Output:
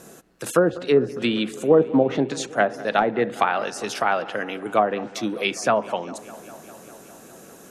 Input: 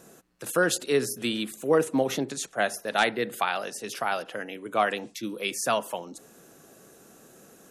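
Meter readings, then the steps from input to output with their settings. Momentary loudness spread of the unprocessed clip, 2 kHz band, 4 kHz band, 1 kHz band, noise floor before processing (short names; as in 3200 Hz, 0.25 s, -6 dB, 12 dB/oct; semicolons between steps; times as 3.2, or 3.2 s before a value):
12 LU, +2.0 dB, +1.0 dB, +5.5 dB, -55 dBFS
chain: treble ducked by the level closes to 740 Hz, closed at -19.5 dBFS; on a send: dark delay 0.201 s, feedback 77%, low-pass 2500 Hz, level -19 dB; on the sum: gain +7 dB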